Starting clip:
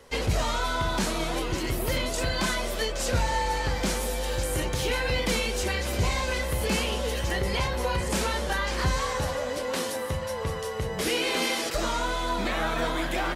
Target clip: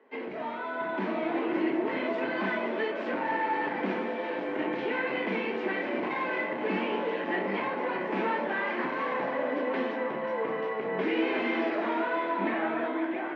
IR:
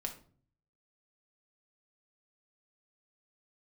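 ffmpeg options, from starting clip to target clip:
-filter_complex "[0:a]dynaudnorm=f=260:g=9:m=10.5dB,volume=18.5dB,asoftclip=hard,volume=-18.5dB,highpass=f=250:w=0.5412,highpass=f=250:w=1.3066,equalizer=f=320:t=q:w=4:g=9,equalizer=f=500:t=q:w=4:g=-5,equalizer=f=1.3k:t=q:w=4:g=-6,lowpass=f=2.2k:w=0.5412,lowpass=f=2.2k:w=1.3066[a];[1:a]atrim=start_sample=2205[b];[a][b]afir=irnorm=-1:irlink=0,volume=-4.5dB"

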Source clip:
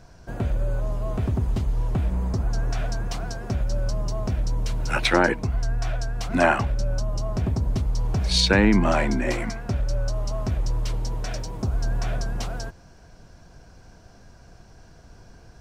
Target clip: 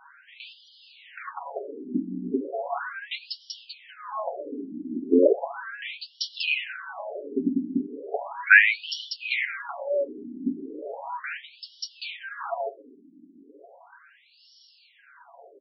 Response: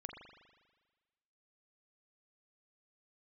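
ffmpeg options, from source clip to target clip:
-filter_complex "[0:a]aecho=1:1:7.2:0.82,asplit=2[a][b];[1:a]atrim=start_sample=2205[c];[b][c]afir=irnorm=-1:irlink=0,volume=-10dB[d];[a][d]amix=inputs=2:normalize=0,afftfilt=real='re*between(b*sr/1024,250*pow(4100/250,0.5+0.5*sin(2*PI*0.36*pts/sr))/1.41,250*pow(4100/250,0.5+0.5*sin(2*PI*0.36*pts/sr))*1.41)':imag='im*between(b*sr/1024,250*pow(4100/250,0.5+0.5*sin(2*PI*0.36*pts/sr))/1.41,250*pow(4100/250,0.5+0.5*sin(2*PI*0.36*pts/sr))*1.41)':win_size=1024:overlap=0.75,volume=6.5dB"

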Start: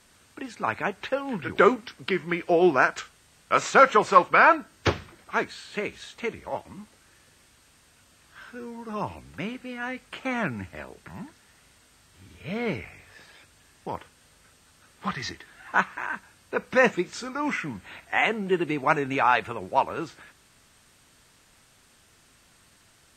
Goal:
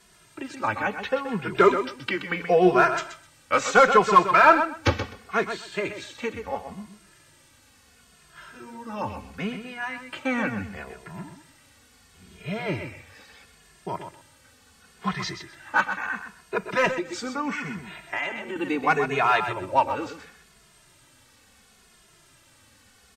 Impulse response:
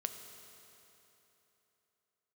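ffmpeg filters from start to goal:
-filter_complex "[0:a]asplit=2[a][b];[b]volume=13.5dB,asoftclip=hard,volume=-13.5dB,volume=-3.5dB[c];[a][c]amix=inputs=2:normalize=0,aecho=1:1:127|254|381:0.355|0.0674|0.0128,asettb=1/sr,asplit=3[d][e][f];[d]atrim=end=16.914[g];[e]atrim=start=16.91:end=18.56,asetpts=PTS-STARTPTS,afade=t=in:d=0.004:c=qsin,afade=t=out:st=1.646:d=0.004:c=qsin,acompressor=threshold=-23dB:ratio=4[h];[f]atrim=start=18.556[i];[g][h]acrossfade=d=0.004:c1=hsin:c2=qsin[j];[j][i]acrossfade=d=0.004:c1=qsin:c2=hsin,asplit=2[k][l];[l]adelay=2.4,afreqshift=-0.73[m];[k][m]amix=inputs=2:normalize=1"

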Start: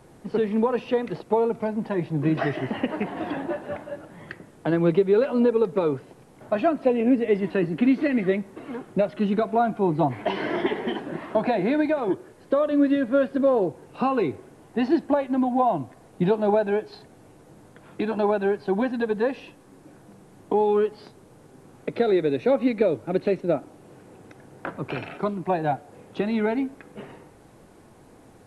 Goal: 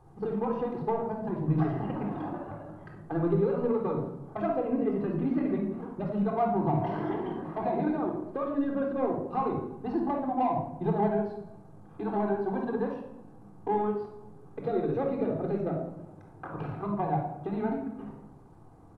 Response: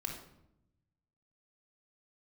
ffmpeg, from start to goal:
-filter_complex "[0:a]highshelf=f=1.5k:t=q:w=1.5:g=-12.5,aecho=1:1:265|530|795:0.0891|0.0374|0.0157,asplit=2[a][b];[b]asoftclip=type=tanh:threshold=-17dB,volume=-7dB[c];[a][c]amix=inputs=2:normalize=0,atempo=1.5,equalizer=f=410:t=o:w=2.1:g=-8.5[d];[1:a]atrim=start_sample=2205[e];[d][e]afir=irnorm=-1:irlink=0,volume=-4.5dB"

